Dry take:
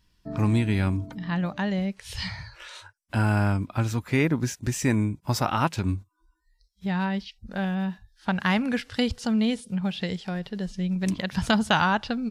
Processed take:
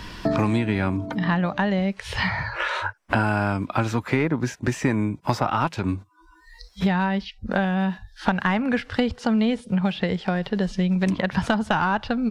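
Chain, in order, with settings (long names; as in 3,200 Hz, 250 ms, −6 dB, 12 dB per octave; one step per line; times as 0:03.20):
mid-hump overdrive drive 11 dB, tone 1,100 Hz, clips at −8 dBFS
multiband upward and downward compressor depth 100%
level +3.5 dB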